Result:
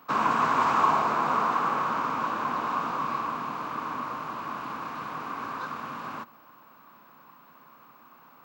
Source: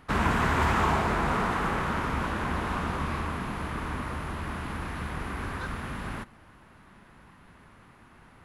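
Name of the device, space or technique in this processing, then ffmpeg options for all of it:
old television with a line whistle: -af "highpass=frequency=170:width=0.5412,highpass=frequency=170:width=1.3066,equalizer=frequency=190:width_type=q:width=4:gain=-10,equalizer=frequency=380:width_type=q:width=4:gain=-6,equalizer=frequency=1100:width_type=q:width=4:gain=9,equalizer=frequency=1900:width_type=q:width=4:gain=-9,equalizer=frequency=3300:width_type=q:width=4:gain=-4,lowpass=frequency=7100:width=0.5412,lowpass=frequency=7100:width=1.3066,aeval=exprs='val(0)+0.00112*sin(2*PI*15734*n/s)':channel_layout=same"

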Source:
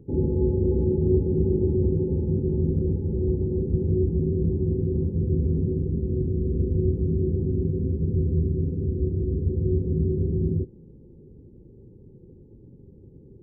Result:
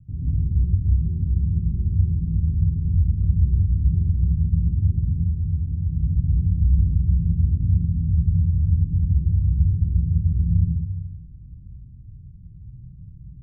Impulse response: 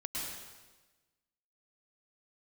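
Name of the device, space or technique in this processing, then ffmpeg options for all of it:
club heard from the street: -filter_complex "[0:a]asettb=1/sr,asplit=3[link_01][link_02][link_03];[link_01]atrim=end=5.134[link_04];[link_02]atrim=start=5.13:end=5.85,asetpts=PTS-STARTPTS,afade=type=in:duration=0.004:curve=qsin,afade=type=out:start_time=0.716:duration=0.004:curve=qsin,lowshelf=frequency=430:gain=-9.5[link_05];[link_03]atrim=start=5.846[link_06];[link_04][link_05]acrossfade=duration=0.004:curve1=hsin:curve2=qsin[link_07];[link_07][link_06]acrossfade=duration=0.004:curve1=qsin:curve2=hsin,alimiter=limit=-20dB:level=0:latency=1,lowpass=frequency=140:width=0.5412,lowpass=frequency=140:width=1.3066[link_08];[1:a]atrim=start_sample=2205[link_09];[link_08][link_09]afir=irnorm=-1:irlink=0,volume=6.5dB"

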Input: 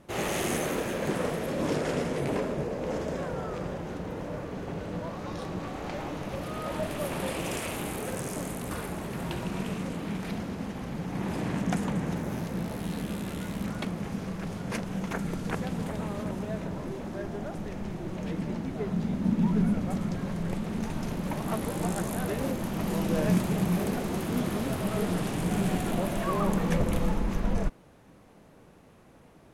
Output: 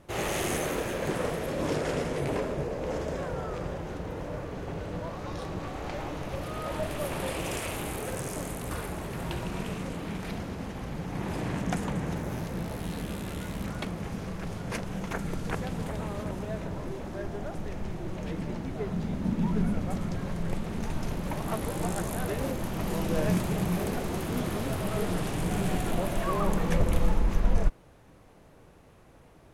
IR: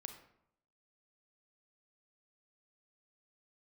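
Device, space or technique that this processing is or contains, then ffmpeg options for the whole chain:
low shelf boost with a cut just above: -af "lowshelf=frequency=98:gain=6.5,equalizer=frequency=210:width_type=o:width=0.83:gain=-5.5"

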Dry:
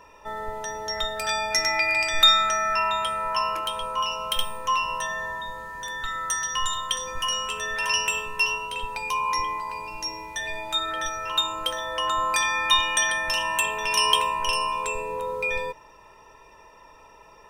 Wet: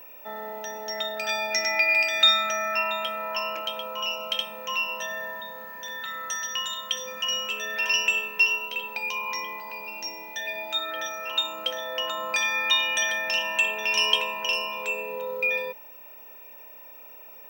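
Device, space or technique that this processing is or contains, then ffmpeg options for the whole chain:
old television with a line whistle: -af "highpass=frequency=200:width=0.5412,highpass=frequency=200:width=1.3066,equalizer=frequency=210:width_type=q:width=4:gain=6,equalizer=frequency=360:width_type=q:width=4:gain=-6,equalizer=frequency=580:width_type=q:width=4:gain=6,equalizer=frequency=1100:width_type=q:width=4:gain=-10,equalizer=frequency=2600:width_type=q:width=4:gain=7,lowpass=frequency=6500:width=0.5412,lowpass=frequency=6500:width=1.3066,aeval=exprs='val(0)+0.00891*sin(2*PI*15734*n/s)':channel_layout=same,volume=-2.5dB"

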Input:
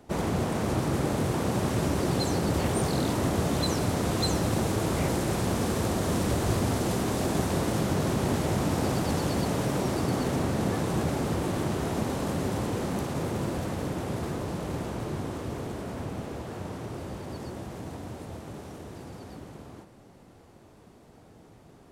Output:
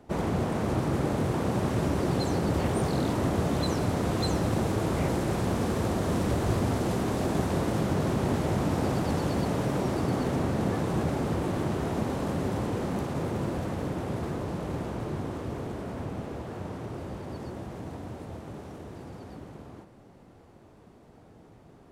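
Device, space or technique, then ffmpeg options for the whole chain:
behind a face mask: -af "highshelf=frequency=3400:gain=-7.5"

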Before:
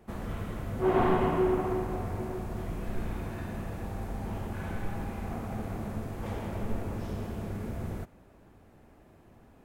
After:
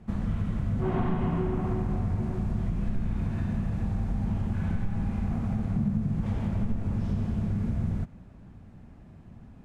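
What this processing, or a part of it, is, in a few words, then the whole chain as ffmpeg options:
jukebox: -filter_complex "[0:a]asettb=1/sr,asplit=3[link_01][link_02][link_03];[link_01]atrim=end=5.764[link_04];[link_02]atrim=start=5.76:end=6.21,asetpts=PTS-STARTPTS,afade=type=in:duration=0.004:curve=qsin,afade=type=out:start_time=0.446:duration=0.004:curve=qsin,equalizer=frequency=170:width=1.6:gain=11[link_05];[link_03]atrim=start=6.206[link_06];[link_04][link_05]acrossfade=duration=0.004:curve1=hsin:curve2=qsin[link_07];[link_07][link_06]acrossfade=duration=0.004:curve1=qsin:curve2=hsin,lowpass=7400,lowshelf=frequency=270:width_type=q:width=1.5:gain=9.5,acompressor=threshold=-24dB:ratio=4"

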